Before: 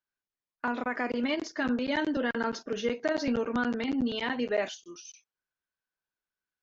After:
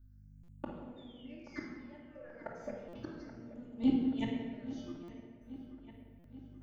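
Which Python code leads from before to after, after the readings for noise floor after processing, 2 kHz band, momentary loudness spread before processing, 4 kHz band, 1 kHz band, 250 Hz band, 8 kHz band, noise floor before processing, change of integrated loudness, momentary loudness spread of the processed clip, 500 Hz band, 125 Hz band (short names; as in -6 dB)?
-58 dBFS, -20.0 dB, 8 LU, -16.0 dB, -17.0 dB, -5.5 dB, n/a, under -85 dBFS, -9.5 dB, 21 LU, -16.0 dB, -0.5 dB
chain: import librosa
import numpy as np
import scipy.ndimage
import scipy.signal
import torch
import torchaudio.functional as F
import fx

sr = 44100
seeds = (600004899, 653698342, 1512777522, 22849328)

p1 = fx.peak_eq(x, sr, hz=2700.0, db=-13.5, octaves=2.0)
p2 = fx.add_hum(p1, sr, base_hz=50, snr_db=34)
p3 = 10.0 ** (-36.0 / 20.0) * np.tanh(p2 / 10.0 ** (-36.0 / 20.0))
p4 = p2 + F.gain(torch.from_numpy(p3), -9.0).numpy()
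p5 = fx.spec_paint(p4, sr, seeds[0], shape='fall', start_s=0.96, length_s=1.52, low_hz=880.0, high_hz=3700.0, level_db=-42.0)
p6 = fx.comb_fb(p5, sr, f0_hz=120.0, decay_s=0.55, harmonics='odd', damping=0.0, mix_pct=80)
p7 = fx.step_gate(p6, sr, bpm=61, pattern='xxxxxxxx..x.', floor_db=-24.0, edge_ms=4.5)
p8 = fx.gate_flip(p7, sr, shuts_db=-37.0, range_db=-27)
p9 = fx.phaser_stages(p8, sr, stages=6, low_hz=270.0, high_hz=1600.0, hz=0.32, feedback_pct=40)
p10 = fx.echo_wet_lowpass(p9, sr, ms=830, feedback_pct=56, hz=3000.0, wet_db=-14.0)
p11 = fx.room_shoebox(p10, sr, seeds[1], volume_m3=1600.0, walls='mixed', distance_m=2.5)
p12 = fx.buffer_glitch(p11, sr, at_s=(0.43, 2.88, 5.03, 6.19), block=256, repeats=8)
y = F.gain(torch.from_numpy(p12), 14.5).numpy()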